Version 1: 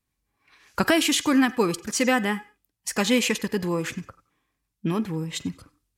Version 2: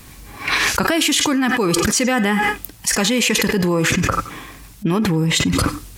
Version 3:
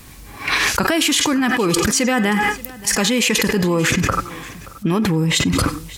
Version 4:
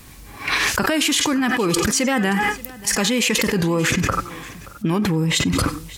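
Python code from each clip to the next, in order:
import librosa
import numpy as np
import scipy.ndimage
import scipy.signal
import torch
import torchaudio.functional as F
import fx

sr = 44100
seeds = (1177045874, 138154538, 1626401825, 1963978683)

y1 = fx.env_flatten(x, sr, amount_pct=100)
y1 = y1 * librosa.db_to_amplitude(-1.0)
y2 = y1 + 10.0 ** (-19.5 / 20.0) * np.pad(y1, (int(578 * sr / 1000.0), 0))[:len(y1)]
y3 = fx.record_warp(y2, sr, rpm=45.0, depth_cents=100.0)
y3 = y3 * librosa.db_to_amplitude(-2.0)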